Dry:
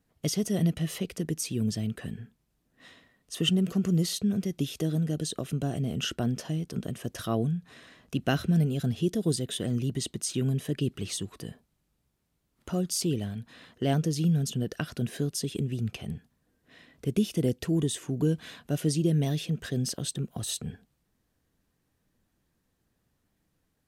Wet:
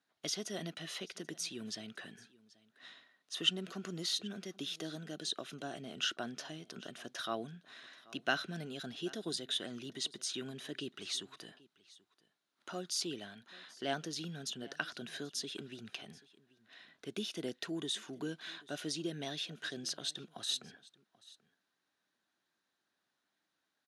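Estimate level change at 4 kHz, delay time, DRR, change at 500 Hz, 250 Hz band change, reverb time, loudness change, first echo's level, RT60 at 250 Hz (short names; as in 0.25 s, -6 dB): -1.0 dB, 0.784 s, none, -10.0 dB, -15.5 dB, none, -10.0 dB, -22.0 dB, none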